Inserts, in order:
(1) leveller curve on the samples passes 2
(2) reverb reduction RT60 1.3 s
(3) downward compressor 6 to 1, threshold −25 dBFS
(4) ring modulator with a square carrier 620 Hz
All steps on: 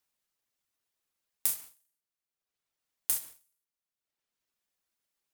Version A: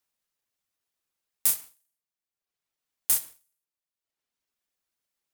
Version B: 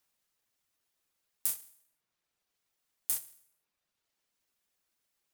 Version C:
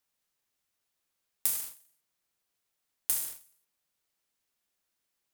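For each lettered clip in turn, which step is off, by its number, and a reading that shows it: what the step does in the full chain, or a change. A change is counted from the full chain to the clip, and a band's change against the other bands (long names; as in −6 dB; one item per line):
3, average gain reduction 4.0 dB
1, change in crest factor +3.0 dB
2, change in momentary loudness spread +4 LU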